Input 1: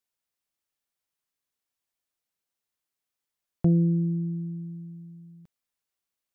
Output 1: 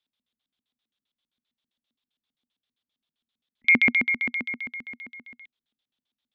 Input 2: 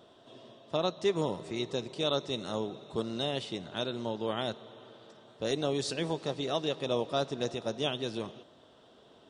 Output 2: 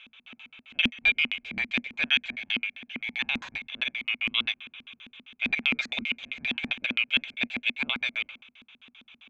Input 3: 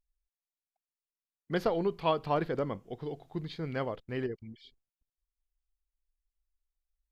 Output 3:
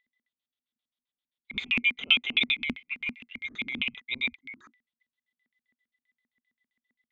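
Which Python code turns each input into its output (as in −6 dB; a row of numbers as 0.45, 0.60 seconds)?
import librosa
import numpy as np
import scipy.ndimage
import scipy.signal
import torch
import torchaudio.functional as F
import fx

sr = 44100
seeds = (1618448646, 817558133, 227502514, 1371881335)

y = fx.band_swap(x, sr, width_hz=2000)
y = fx.filter_lfo_lowpass(y, sr, shape='square', hz=7.6, low_hz=240.0, high_hz=3500.0, q=7.7)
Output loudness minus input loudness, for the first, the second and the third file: +4.5, +6.0, +6.0 LU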